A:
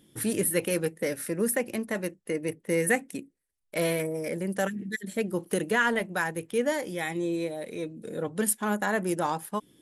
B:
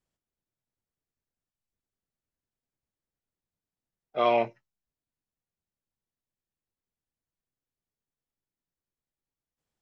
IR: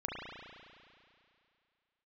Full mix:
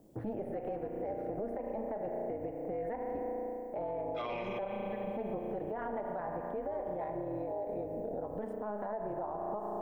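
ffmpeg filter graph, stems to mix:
-filter_complex "[0:a]lowpass=f=660:t=q:w=4.5,tremolo=f=210:d=0.75,volume=1,asplit=2[s0][s1];[s1]volume=0.501[s2];[1:a]acrossover=split=2600[s3][s4];[s4]acompressor=threshold=0.00398:ratio=4:attack=1:release=60[s5];[s3][s5]amix=inputs=2:normalize=0,aemphasis=mode=production:type=75kf,alimiter=limit=0.158:level=0:latency=1,volume=0.794,asplit=2[s6][s7];[s7]volume=0.668[s8];[2:a]atrim=start_sample=2205[s9];[s2][s8]amix=inputs=2:normalize=0[s10];[s10][s9]afir=irnorm=-1:irlink=0[s11];[s0][s6][s11]amix=inputs=3:normalize=0,acrossover=split=95|890[s12][s13][s14];[s12]acompressor=threshold=0.00355:ratio=4[s15];[s13]acompressor=threshold=0.0224:ratio=4[s16];[s14]acompressor=threshold=0.0224:ratio=4[s17];[s15][s16][s17]amix=inputs=3:normalize=0,alimiter=level_in=1.78:limit=0.0631:level=0:latency=1:release=80,volume=0.562"

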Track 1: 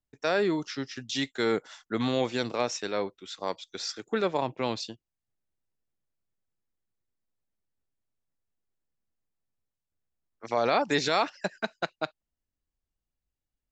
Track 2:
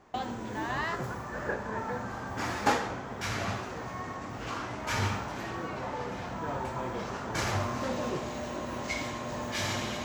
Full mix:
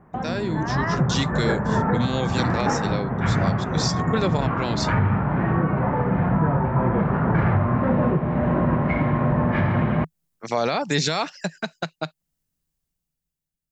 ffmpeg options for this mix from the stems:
-filter_complex "[0:a]highshelf=f=5300:g=11.5,volume=0.562[s0];[1:a]lowpass=f=1900:w=0.5412,lowpass=f=1900:w=1.3066,lowshelf=f=150:g=5.5,volume=1.41[s1];[s0][s1]amix=inputs=2:normalize=0,equalizer=f=160:t=o:w=0.62:g=14,dynaudnorm=f=230:g=9:m=3.76,alimiter=limit=0.282:level=0:latency=1:release=289"

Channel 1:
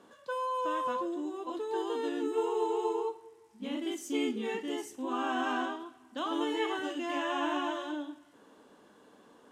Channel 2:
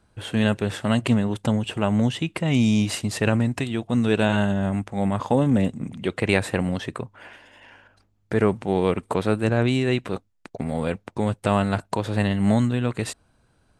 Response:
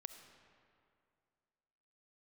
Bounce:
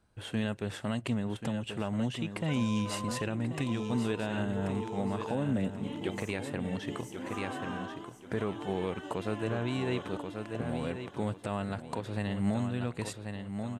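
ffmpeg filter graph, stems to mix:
-filter_complex "[0:a]acrossover=split=170[s0][s1];[s1]acompressor=threshold=0.0112:ratio=2[s2];[s0][s2]amix=inputs=2:normalize=0,adelay=2200,volume=0.75,asplit=2[s3][s4];[s4]volume=0.335[s5];[1:a]volume=0.398,asplit=2[s6][s7];[s7]volume=0.335[s8];[s5][s8]amix=inputs=2:normalize=0,aecho=0:1:1085|2170|3255|4340:1|0.31|0.0961|0.0298[s9];[s3][s6][s9]amix=inputs=3:normalize=0,alimiter=limit=0.0944:level=0:latency=1:release=331"

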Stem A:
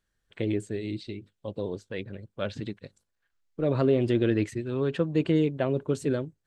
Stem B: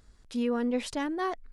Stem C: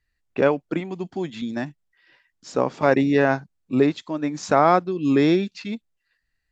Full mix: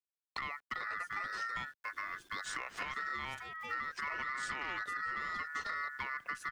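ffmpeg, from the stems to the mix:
-filter_complex "[0:a]asubboost=boost=5:cutoff=82,adelay=400,volume=1.12[s0];[1:a]acompressor=threshold=0.0158:ratio=6,adelay=2450,volume=0.708[s1];[2:a]acompressor=threshold=0.0562:ratio=6,volume=1.33[s2];[s0][s2]amix=inputs=2:normalize=0,acrusher=bits=9:mix=0:aa=0.000001,alimiter=limit=0.15:level=0:latency=1:release=166,volume=1[s3];[s1][s3]amix=inputs=2:normalize=0,aeval=exprs='val(0)*sin(2*PI*1600*n/s)':c=same,acrossover=split=100|560[s4][s5][s6];[s4]acompressor=threshold=0.00126:ratio=4[s7];[s5]acompressor=threshold=0.00224:ratio=4[s8];[s6]acompressor=threshold=0.0141:ratio=4[s9];[s7][s8][s9]amix=inputs=3:normalize=0,asoftclip=type=tanh:threshold=0.0422"

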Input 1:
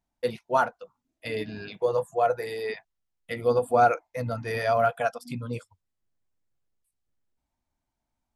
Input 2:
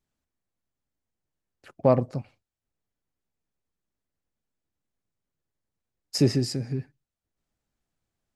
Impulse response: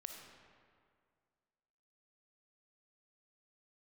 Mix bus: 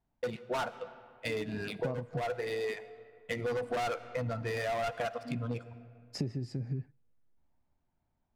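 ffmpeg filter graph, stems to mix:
-filter_complex "[0:a]acontrast=89,asoftclip=type=hard:threshold=0.133,adynamicsmooth=sensitivity=6.5:basefreq=2200,volume=0.447,asplit=2[s0][s1];[s1]volume=0.398[s2];[1:a]lowpass=f=1900:p=1,equalizer=f=120:w=0.88:g=6.5,volume=0.631[s3];[2:a]atrim=start_sample=2205[s4];[s2][s4]afir=irnorm=-1:irlink=0[s5];[s0][s3][s5]amix=inputs=3:normalize=0,acompressor=threshold=0.0282:ratio=12"

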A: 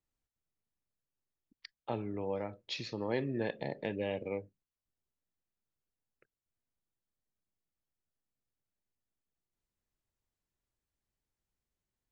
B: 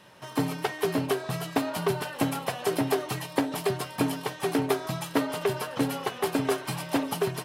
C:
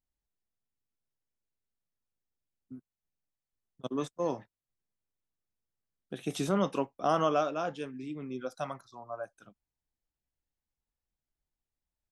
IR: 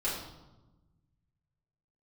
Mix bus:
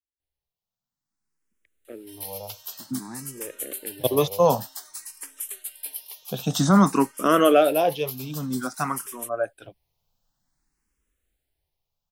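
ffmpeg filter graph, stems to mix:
-filter_complex "[0:a]adynamicsmooth=sensitivity=3:basefreq=970,asplit=2[s0][s1];[s1]afreqshift=-1.1[s2];[s0][s2]amix=inputs=2:normalize=1,volume=0.282[s3];[1:a]highpass=320,aderivative,crystalizer=i=1.5:c=0,adelay=1850,volume=0.188[s4];[2:a]adelay=200,volume=1.41[s5];[s3][s4][s5]amix=inputs=3:normalize=0,dynaudnorm=f=490:g=7:m=6.31,asplit=2[s6][s7];[s7]afreqshift=0.53[s8];[s6][s8]amix=inputs=2:normalize=1"

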